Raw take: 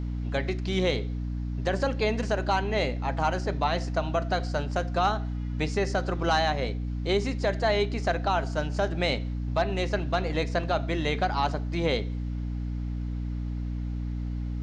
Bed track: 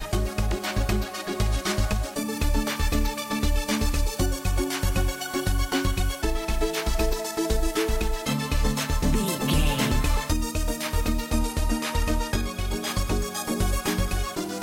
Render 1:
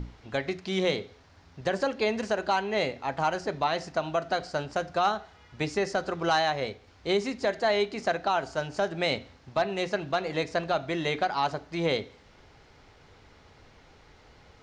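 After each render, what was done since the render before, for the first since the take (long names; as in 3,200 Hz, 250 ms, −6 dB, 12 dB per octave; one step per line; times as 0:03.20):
mains-hum notches 60/120/180/240/300 Hz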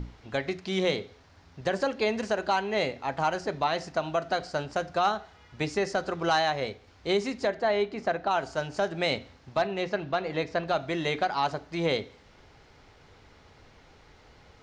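0:07.47–0:08.31: low-pass filter 2,100 Hz 6 dB per octave
0:09.67–0:10.68: high-frequency loss of the air 110 metres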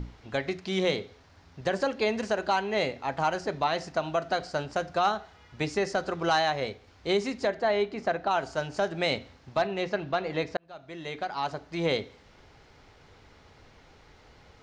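0:10.57–0:11.90: fade in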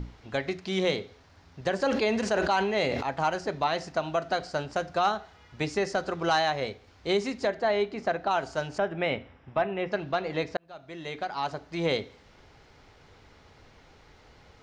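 0:01.77–0:03.03: level that may fall only so fast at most 31 dB per second
0:08.78–0:09.92: Savitzky-Golay smoothing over 25 samples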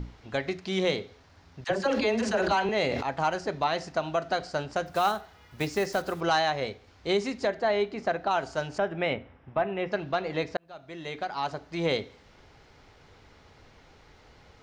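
0:01.64–0:02.69: all-pass dispersion lows, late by 50 ms, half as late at 550 Hz
0:04.86–0:06.21: one scale factor per block 5 bits
0:09.13–0:09.67: low-pass filter 2,300 Hz 6 dB per octave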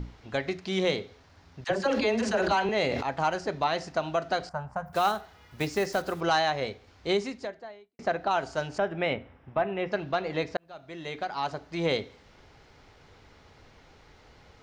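0:04.49–0:04.93: drawn EQ curve 200 Hz 0 dB, 310 Hz −23 dB, 930 Hz +5 dB, 3,800 Hz −25 dB, 7,000 Hz −17 dB, 13,000 Hz −2 dB
0:07.13–0:07.99: fade out quadratic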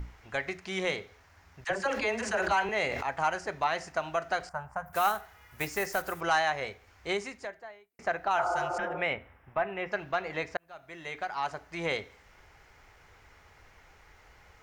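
0:08.41–0:08.98: healed spectral selection 250–1,500 Hz both
graphic EQ with 10 bands 125 Hz −6 dB, 250 Hz −9 dB, 500 Hz −4 dB, 2,000 Hz +4 dB, 4,000 Hz −9 dB, 16,000 Hz +11 dB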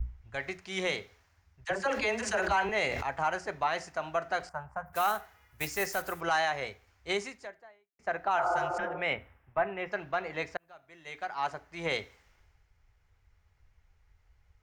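brickwall limiter −20 dBFS, peak gain reduction 5 dB
multiband upward and downward expander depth 70%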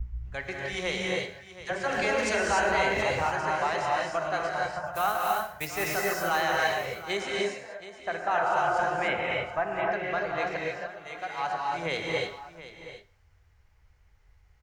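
multi-tap delay 118/725 ms −15/−14.5 dB
reverb whose tail is shaped and stops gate 320 ms rising, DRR −2 dB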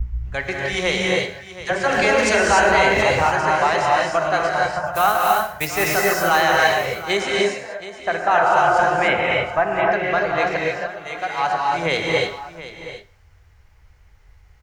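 level +10 dB
brickwall limiter −3 dBFS, peak gain reduction 1 dB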